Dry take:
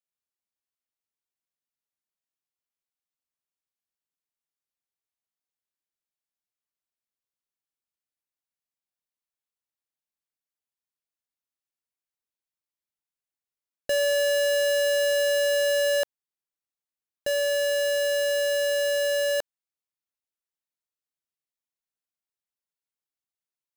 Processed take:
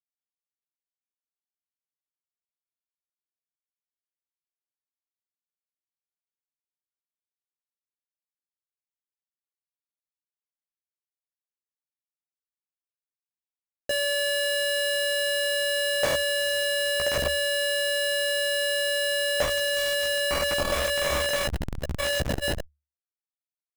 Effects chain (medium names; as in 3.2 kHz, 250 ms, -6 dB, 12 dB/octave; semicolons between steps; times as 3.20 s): in parallel at +0.5 dB: peak limiter -33 dBFS, peak gain reduction 10 dB; on the sum: echo that smears into a reverb 1116 ms, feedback 71%, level -13 dB; Schmitt trigger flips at -34.5 dBFS; peaking EQ 73 Hz +8 dB 0.21 oct; doubling 15 ms -3 dB; transformer saturation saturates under 170 Hz; trim +5 dB